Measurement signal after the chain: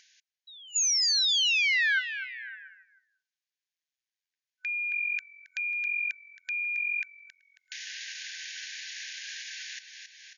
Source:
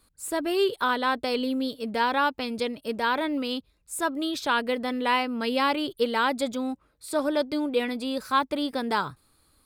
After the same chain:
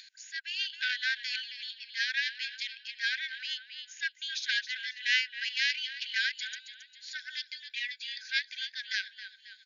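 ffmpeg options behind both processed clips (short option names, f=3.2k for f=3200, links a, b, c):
-filter_complex "[0:a]asplit=5[a][b][c][d][e];[b]adelay=271,afreqshift=-44,volume=-11dB[f];[c]adelay=542,afreqshift=-88,volume=-20.6dB[g];[d]adelay=813,afreqshift=-132,volume=-30.3dB[h];[e]adelay=1084,afreqshift=-176,volume=-39.9dB[i];[a][f][g][h][i]amix=inputs=5:normalize=0,acompressor=mode=upward:threshold=-31dB:ratio=2.5,aeval=exprs='0.282*(cos(1*acos(clip(val(0)/0.282,-1,1)))-cos(1*PI/2))+0.126*(cos(2*acos(clip(val(0)/0.282,-1,1)))-cos(2*PI/2))':c=same,afftfilt=real='re*between(b*sr/4096,1500,7000)':imag='im*between(b*sr/4096,1500,7000)':win_size=4096:overlap=0.75"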